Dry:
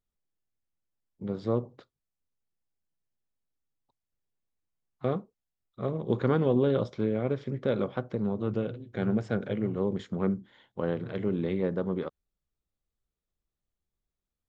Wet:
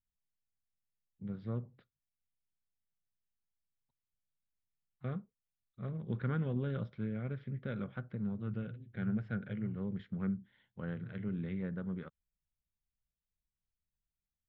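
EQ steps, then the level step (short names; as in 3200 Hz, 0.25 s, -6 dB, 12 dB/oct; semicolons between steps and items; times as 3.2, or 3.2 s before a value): air absorption 400 m; dynamic EQ 1400 Hz, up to +7 dB, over -56 dBFS, Q 2.8; band shelf 590 Hz -11.5 dB 2.5 oct; -4.5 dB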